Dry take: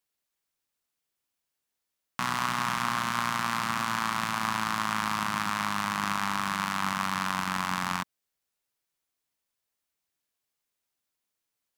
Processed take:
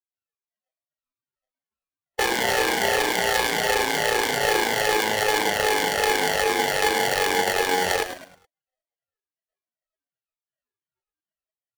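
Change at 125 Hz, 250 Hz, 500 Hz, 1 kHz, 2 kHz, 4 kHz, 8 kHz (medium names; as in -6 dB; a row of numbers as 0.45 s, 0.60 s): -0.5 dB, +3.0 dB, +22.5 dB, +4.5 dB, +8.5 dB, +10.0 dB, +10.5 dB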